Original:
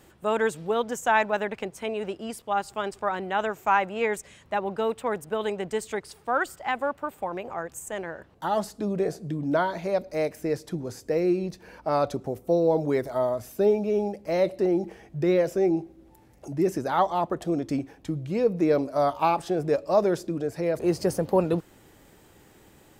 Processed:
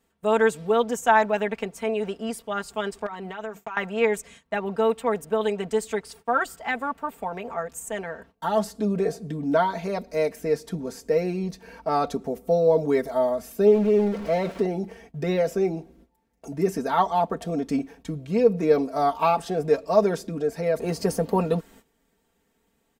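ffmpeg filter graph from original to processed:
-filter_complex "[0:a]asettb=1/sr,asplit=3[a][b][c];[a]atrim=end=3.064[d];[b]atrim=start=3.06:end=3.77,asetpts=PTS-STARTPTS,afade=t=in:d=0.004:c=qsin,afade=t=out:st=0.706:d=0.004:c=qsin,bandreject=f=50:t=h:w=6,bandreject=f=100:t=h:w=6,bandreject=f=150:t=h:w=6,bandreject=f=200:t=h:w=6,agate=range=-33dB:threshold=-40dB:ratio=3:release=100:detection=peak,acompressor=threshold=-32dB:ratio=8:attack=3.2:release=140:knee=1:detection=peak[e];[c]atrim=start=3.766[f];[d][e]acrossfade=d=0.004:c1=hsin:c2=qsin[g];[g][f]acrossfade=d=0.004:c1=qsin:c2=hsin,asettb=1/sr,asplit=3[h][i][j];[h]atrim=end=13.674[k];[i]atrim=start=13.67:end=14.62,asetpts=PTS-STARTPTS,afade=t=in:d=0.004:c=qsin,afade=t=out:st=0.946:d=0.004:c=qsin,aeval=exprs='val(0)+0.5*0.0251*sgn(val(0))':c=same,lowpass=f=2.3k:p=1[l];[j]atrim=start=14.616[m];[k][l]acrossfade=d=0.004:c1=hsin:c2=qsin[n];[n][m]acrossfade=d=0.004:c1=qsin:c2=hsin,agate=range=-17dB:threshold=-50dB:ratio=16:detection=peak,aecho=1:1:4.4:0.8"

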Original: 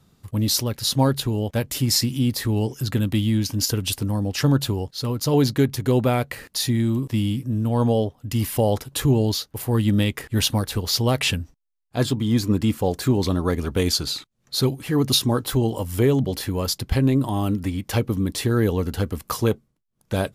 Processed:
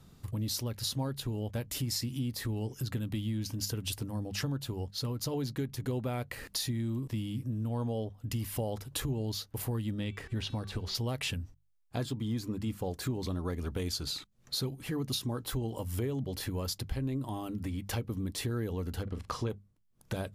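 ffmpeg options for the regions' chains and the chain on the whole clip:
-filter_complex "[0:a]asettb=1/sr,asplit=3[a][b][c];[a]atrim=end=9.934[d];[b]atrim=start=9.93:end=10.95,asetpts=PTS-STARTPTS,afade=t=in:d=0.004:c=qsin,afade=t=out:st=1.016:d=0.004:c=qsin,acrossover=split=4600[e][f];[f]acompressor=threshold=-37dB:ratio=4:attack=1:release=60[g];[e][g]amix=inputs=2:normalize=0,equalizer=f=13k:t=o:w=0.66:g=-11.5,bandreject=f=382.6:t=h:w=4,bandreject=f=765.2:t=h:w=4,bandreject=f=1.1478k:t=h:w=4,bandreject=f=1.5304k:t=h:w=4,bandreject=f=1.913k:t=h:w=4,bandreject=f=2.2956k:t=h:w=4,bandreject=f=2.6782k:t=h:w=4,bandreject=f=3.0608k:t=h:w=4,bandreject=f=3.4434k:t=h:w=4,bandreject=f=3.826k:t=h:w=4,bandreject=f=4.2086k:t=h:w=4,bandreject=f=4.5912k:t=h:w=4,bandreject=f=4.9738k:t=h:w=4,bandreject=f=5.3564k:t=h:w=4,bandreject=f=5.739k:t=h:w=4,bandreject=f=6.1216k:t=h:w=4,bandreject=f=6.5042k:t=h:w=4,bandreject=f=6.8868k:t=h:w=4,bandreject=f=7.2694k:t=h:w=4,bandreject=f=7.652k:t=h:w=4[h];[c]atrim=start=10.946[i];[d][h]acrossfade=d=0.004:c1=hsin:c2=qsin[j];[j][i]acrossfade=d=0.004:c1=qsin:c2=hsin,asettb=1/sr,asplit=3[k][l][m];[k]atrim=end=19.034[n];[l]atrim=start=19.03:end=19.5,asetpts=PTS-STARTPTS,afade=t=in:d=0.004:c=qsin,afade=t=out:st=0.466:d=0.004:c=qsin,lowpass=5.4k,asplit=2[o][p];[p]adelay=42,volume=-10.5dB[q];[o][q]amix=inputs=2:normalize=0,atrim=end_sample=20727[r];[m]atrim=start=19.496[s];[n][r]acrossfade=d=0.004:c1=hsin:c2=qsin[t];[t][s]acrossfade=d=0.004:c1=qsin:c2=hsin,lowshelf=f=91:g=7.5,acompressor=threshold=-34dB:ratio=4,bandreject=f=50:t=h:w=6,bandreject=f=100:t=h:w=6,bandreject=f=150:t=h:w=6,bandreject=f=200:t=h:w=6"

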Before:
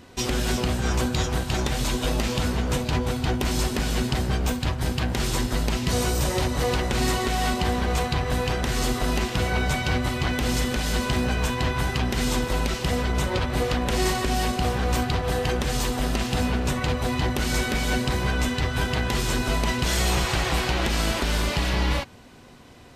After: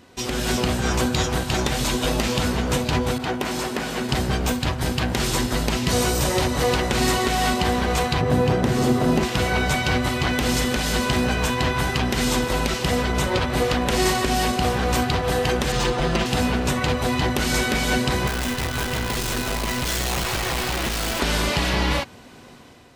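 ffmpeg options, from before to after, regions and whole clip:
-filter_complex "[0:a]asettb=1/sr,asplit=3[a][b][c];[a]atrim=end=3.184[d];[b]atrim=start=3.18:end=4.09,asetpts=PTS-STARTPTS,afade=t=in:d=0.004:c=qsin,afade=t=out:st=0.906:d=0.004:c=qsin,highpass=f=300:p=1,adynamicequalizer=threshold=0.00447:dfrequency=2700:dqfactor=0.7:tfrequency=2700:tqfactor=0.7:attack=5:release=100:ratio=0.375:range=3.5:mode=cutabove:tftype=highshelf[e];[c]atrim=start=4.086[f];[d][e]acrossfade=d=0.004:c1=hsin:c2=qsin[g];[g][f]acrossfade=d=0.004:c1=qsin:c2=hsin,asettb=1/sr,asplit=3[h][i][j];[h]atrim=end=8.214[k];[i]atrim=start=8.21:end=9.23,asetpts=PTS-STARTPTS,afade=t=in:d=0.004:c=qsin,afade=t=out:st=1.016:d=0.004:c=qsin,highpass=f=81:w=0.5412,highpass=f=81:w=1.3066,tiltshelf=f=890:g=7[l];[j]atrim=start=9.226[m];[k][l]acrossfade=d=0.004:c1=hsin:c2=qsin[n];[n][m]acrossfade=d=0.004:c1=qsin:c2=hsin,asettb=1/sr,asplit=3[o][p][q];[o]atrim=end=15.724[r];[p]atrim=start=15.72:end=16.26,asetpts=PTS-STARTPTS,afade=t=in:d=0.004:c=qsin,afade=t=out:st=0.536:d=0.004:c=qsin,aecho=1:1:5.8:0.86,atrim=end_sample=23814,adynamicsmooth=sensitivity=2:basefreq=4.1k[s];[q]atrim=start=16.256[t];[r][s]acrossfade=d=0.004:c1=hsin:c2=qsin[u];[u][t]acrossfade=d=0.004:c1=qsin:c2=hsin,asettb=1/sr,asplit=3[v][w][x];[v]atrim=end=18.274[y];[w]atrim=start=18.27:end=21.2,asetpts=PTS-STARTPTS,afade=t=in:d=0.004:c=qsin,afade=t=out:st=2.926:d=0.004:c=qsin,lowshelf=f=120:g=3,acrusher=bits=5:dc=4:mix=0:aa=0.000001,volume=23.5dB,asoftclip=hard,volume=-23.5dB[z];[x]atrim=start=21.196[aa];[y][z]acrossfade=d=0.004:c1=hsin:c2=qsin[ab];[ab][aa]acrossfade=d=0.004:c1=qsin:c2=hsin,lowshelf=f=80:g=-8.5,dynaudnorm=f=110:g=7:m=6dB,volume=-1.5dB"

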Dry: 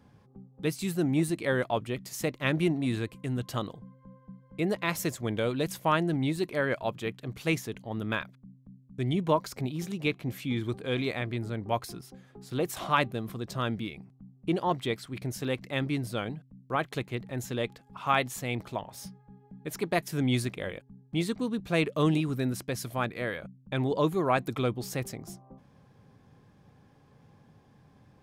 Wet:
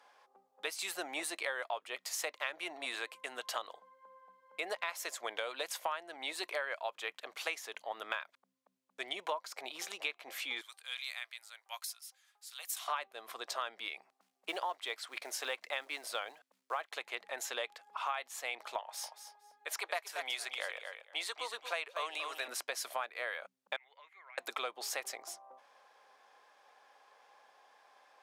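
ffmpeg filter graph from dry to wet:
-filter_complex "[0:a]asettb=1/sr,asplit=3[a][b][c];[a]atrim=end=10.614[d];[b]atrim=start=10.61:end=12.88,asetpts=PTS-STARTPTS,afade=t=in:d=0.004:c=qsin,afade=t=out:st=2.266:d=0.004:c=qsin,highpass=750,aderivative[e];[c]atrim=start=12.876[f];[d][e]acrossfade=d=0.004:c1=hsin:c2=qsin[g];[g][f]acrossfade=d=0.004:c1=qsin:c2=hsin,asettb=1/sr,asplit=3[h][i][j];[h]atrim=end=14.124[k];[i]atrim=start=14.12:end=16.95,asetpts=PTS-STARTPTS,afade=t=in:d=0.004:c=qsin,afade=t=out:st=2.826:d=0.004:c=qsin,highpass=160,acrusher=bits=8:mode=log:mix=0:aa=0.000001[l];[j]atrim=start=16.946[m];[k][l]acrossfade=d=0.004:c1=hsin:c2=qsin[n];[n][m]acrossfade=d=0.004:c1=qsin:c2=hsin,asettb=1/sr,asplit=3[o][p][q];[o]atrim=end=18.804[r];[p]atrim=start=18.8:end=22.48,asetpts=PTS-STARTPTS,afade=t=in:d=0.004:c=qsin,afade=t=out:st=3.676:d=0.004:c=qsin,highpass=510,aecho=1:1:232|464:0.299|0.0478,atrim=end_sample=162288[s];[q]atrim=start=22.476[t];[r][s]acrossfade=d=0.004:c1=hsin:c2=qsin[u];[u][t]acrossfade=d=0.004:c1=qsin:c2=hsin,asettb=1/sr,asplit=3[v][w][x];[v]atrim=end=23.764[y];[w]atrim=start=23.76:end=24.38,asetpts=PTS-STARTPTS,afade=t=in:d=0.004:c=qsin,afade=t=out:st=0.616:d=0.004:c=qsin,bandpass=f=2.1k:t=q:w=15,acompressor=threshold=-55dB:ratio=6:attack=3.2:release=140:knee=1:detection=peak[z];[x]atrim=start=24.376[aa];[y][z]acrossfade=d=0.004:c1=hsin:c2=qsin[ab];[ab][aa]acrossfade=d=0.004:c1=qsin:c2=hsin,highpass=f=640:w=0.5412,highpass=f=640:w=1.3066,highshelf=f=12k:g=-10,acompressor=threshold=-39dB:ratio=8,volume=5dB"

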